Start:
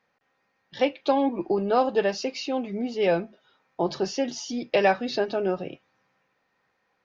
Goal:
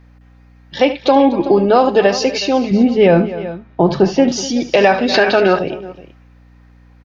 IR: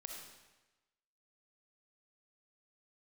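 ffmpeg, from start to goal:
-filter_complex "[0:a]asettb=1/sr,asplit=3[link_01][link_02][link_03];[link_01]atrim=end=2.714[link_04];[link_02]atrim=start=2.71:end=4.32,asetpts=PTS-STARTPTS,afade=type=in:duration=0.004:curve=qsin,afade=type=out:start_time=1.606:duration=0.004:curve=qsin,bass=frequency=250:gain=9,treble=frequency=4000:gain=-13[link_05];[link_03]atrim=start=4.316[link_06];[link_04][link_05]acrossfade=duration=0.004:curve1=hsin:curve2=qsin[link_07];[link_07][link_06]acrossfade=duration=0.004:curve1=qsin:curve2=hsin,aecho=1:1:74|244|372:0.178|0.126|0.133,aeval=exprs='val(0)+0.00141*(sin(2*PI*60*n/s)+sin(2*PI*2*60*n/s)/2+sin(2*PI*3*60*n/s)/3+sin(2*PI*4*60*n/s)/4+sin(2*PI*5*60*n/s)/5)':channel_layout=same,asettb=1/sr,asplit=3[link_08][link_09][link_10];[link_08]atrim=end=5.144[link_11];[link_09]atrim=start=5.14:end=5.59,asetpts=PTS-STARTPTS,afade=type=in:duration=0.004:curve=qsin,afade=type=out:start_time=0.446:duration=0.004:curve=qsin,equalizer=frequency=2000:width=0.67:gain=12[link_12];[link_10]atrim=start=5.586[link_13];[link_11][link_12]acrossfade=duration=0.004:curve1=hsin:curve2=qsin[link_14];[link_14][link_13]acrossfade=duration=0.004:curve1=qsin:curve2=hsin,alimiter=level_in=14dB:limit=-1dB:release=50:level=0:latency=1,volume=-1dB"

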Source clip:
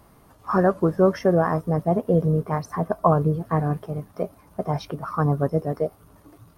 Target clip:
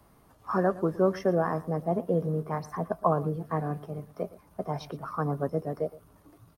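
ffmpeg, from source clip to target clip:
ffmpeg -i in.wav -filter_complex "[0:a]aecho=1:1:116:0.119,acrossover=split=150|390|1900[link_01][link_02][link_03][link_04];[link_01]asoftclip=type=tanh:threshold=-37dB[link_05];[link_05][link_02][link_03][link_04]amix=inputs=4:normalize=0,volume=-6dB" out.wav

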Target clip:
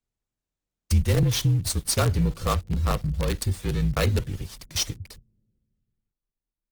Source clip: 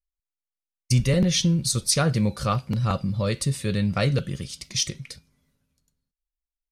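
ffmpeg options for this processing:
ffmpeg -i in.wav -filter_complex "[0:a]highshelf=frequency=2900:gain=-2.5,acrossover=split=460[link_01][link_02];[link_02]acrusher=bits=5:dc=4:mix=0:aa=0.000001[link_03];[link_01][link_03]amix=inputs=2:normalize=0,afreqshift=-42" -ar 48000 -c:a libopus -b:a 20k out.opus

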